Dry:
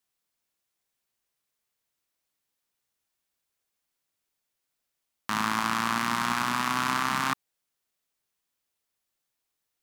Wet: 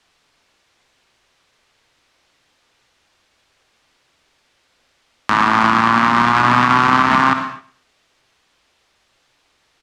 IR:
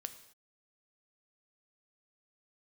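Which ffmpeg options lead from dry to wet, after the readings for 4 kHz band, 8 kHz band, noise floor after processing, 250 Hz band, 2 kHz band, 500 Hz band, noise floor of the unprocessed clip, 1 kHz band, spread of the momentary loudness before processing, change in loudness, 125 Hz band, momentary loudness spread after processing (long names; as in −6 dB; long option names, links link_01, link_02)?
+7.5 dB, can't be measured, −63 dBFS, +14.0 dB, +13.0 dB, +16.0 dB, −83 dBFS, +15.0 dB, 5 LU, +13.5 dB, +15.5 dB, 8 LU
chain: -filter_complex "[0:a]lowpass=4300,equalizer=frequency=190:width_type=o:width=0.77:gain=-4,acrossover=split=260|1800[link_01][link_02][link_03];[link_01]acompressor=threshold=-47dB:ratio=4[link_04];[link_02]acompressor=threshold=-34dB:ratio=4[link_05];[link_03]acompressor=threshold=-50dB:ratio=4[link_06];[link_04][link_05][link_06]amix=inputs=3:normalize=0,aecho=1:1:114|228:0.112|0.0325[link_07];[1:a]atrim=start_sample=2205[link_08];[link_07][link_08]afir=irnorm=-1:irlink=0,alimiter=level_in=30.5dB:limit=-1dB:release=50:level=0:latency=1,volume=-1dB"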